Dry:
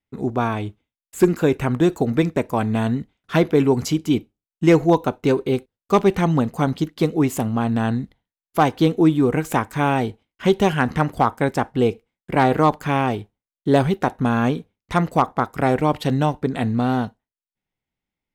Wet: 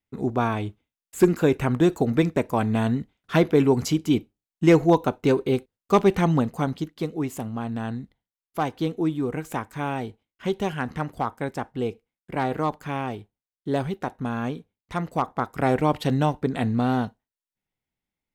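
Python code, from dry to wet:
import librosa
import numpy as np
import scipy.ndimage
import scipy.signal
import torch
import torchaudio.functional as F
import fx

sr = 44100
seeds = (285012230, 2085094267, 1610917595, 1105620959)

y = fx.gain(x, sr, db=fx.line((6.32, -2.0), (7.04, -9.0), (14.98, -9.0), (15.74, -2.5)))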